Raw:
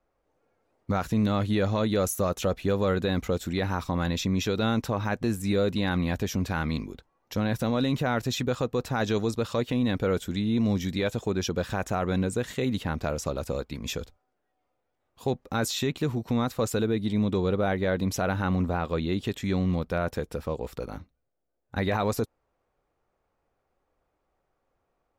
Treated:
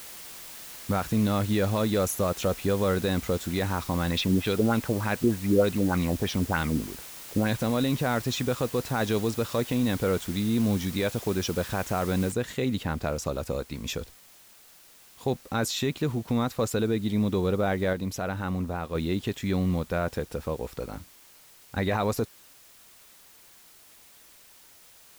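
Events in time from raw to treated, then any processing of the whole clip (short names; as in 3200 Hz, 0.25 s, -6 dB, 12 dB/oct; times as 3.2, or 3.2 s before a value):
4.11–7.58 LFO low-pass sine 3.3 Hz 310–4200 Hz
12.32 noise floor step -43 dB -54 dB
17.93–18.95 gain -4 dB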